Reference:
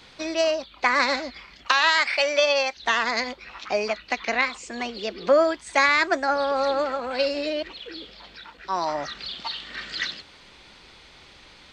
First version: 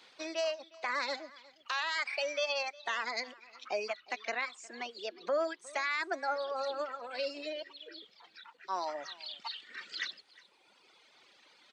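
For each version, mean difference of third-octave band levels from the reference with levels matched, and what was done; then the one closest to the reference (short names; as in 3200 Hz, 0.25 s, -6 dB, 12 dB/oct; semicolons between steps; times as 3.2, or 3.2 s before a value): 4.0 dB: HPF 340 Hz 12 dB/oct; reverb removal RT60 1.9 s; limiter -15 dBFS, peak gain reduction 9.5 dB; on a send: echo 0.359 s -22 dB; on the sum: gain -8.5 dB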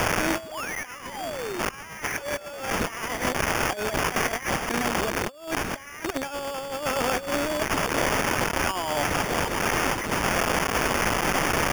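19.5 dB: switching spikes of -18.5 dBFS; painted sound fall, 0.43–1.6, 330–4000 Hz -25 dBFS; negative-ratio compressor -27 dBFS, ratio -0.5; sample-rate reducer 4000 Hz, jitter 0%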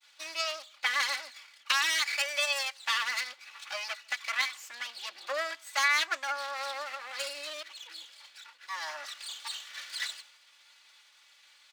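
10.0 dB: minimum comb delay 3.5 ms; expander -47 dBFS; HPF 1300 Hz 12 dB/oct; outdoor echo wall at 26 m, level -29 dB; gain -4 dB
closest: first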